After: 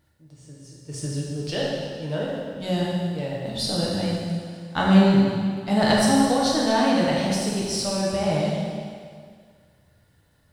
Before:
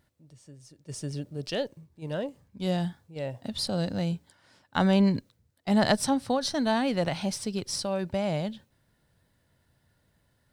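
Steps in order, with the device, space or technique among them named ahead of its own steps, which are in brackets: stairwell (reverb RT60 2.0 s, pre-delay 5 ms, DRR -5 dB)

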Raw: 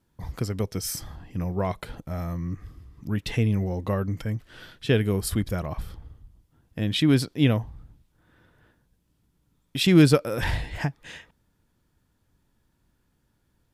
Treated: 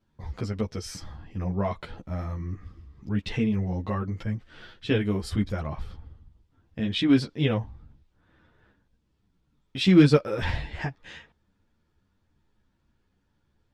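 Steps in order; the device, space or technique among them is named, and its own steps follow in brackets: string-machine ensemble chorus (ensemble effect; LPF 5100 Hz 12 dB/oct); gain +1.5 dB

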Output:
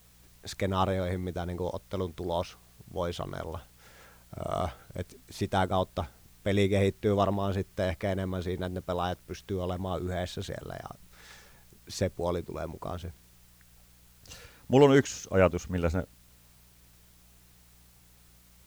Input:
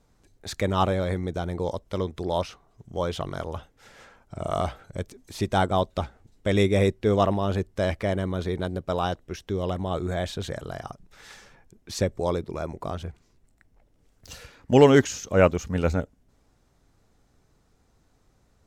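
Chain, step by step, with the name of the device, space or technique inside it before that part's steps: video cassette with head-switching buzz (buzz 60 Hz, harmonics 3, -57 dBFS -4 dB/oct; white noise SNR 30 dB); gain -4.5 dB

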